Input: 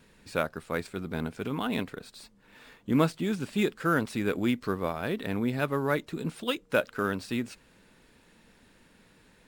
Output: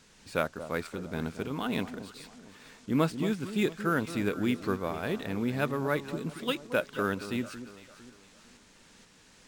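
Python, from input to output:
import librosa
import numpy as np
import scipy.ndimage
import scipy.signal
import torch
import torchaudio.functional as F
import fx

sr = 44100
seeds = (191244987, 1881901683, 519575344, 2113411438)

y = fx.dmg_noise_band(x, sr, seeds[0], low_hz=710.0, high_hz=7900.0, level_db=-60.0)
y = fx.tremolo_shape(y, sr, shape='saw_up', hz=2.1, depth_pct=35)
y = fx.echo_alternate(y, sr, ms=227, hz=1100.0, feedback_pct=58, wet_db=-11)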